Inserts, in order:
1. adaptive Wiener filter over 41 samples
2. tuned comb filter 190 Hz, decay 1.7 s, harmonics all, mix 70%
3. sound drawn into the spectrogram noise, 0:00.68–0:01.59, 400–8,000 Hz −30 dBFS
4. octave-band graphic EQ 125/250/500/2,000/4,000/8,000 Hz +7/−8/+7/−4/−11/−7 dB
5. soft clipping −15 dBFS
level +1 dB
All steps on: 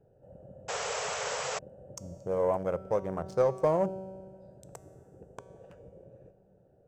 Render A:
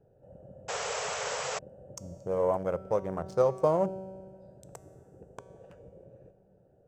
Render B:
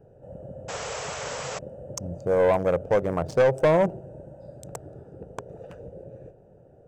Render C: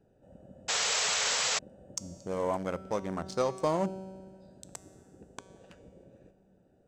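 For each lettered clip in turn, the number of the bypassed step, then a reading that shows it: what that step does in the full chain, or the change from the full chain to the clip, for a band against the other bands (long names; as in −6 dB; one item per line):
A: 5, distortion level −24 dB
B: 2, 4 kHz band −5.5 dB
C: 4, 4 kHz band +10.0 dB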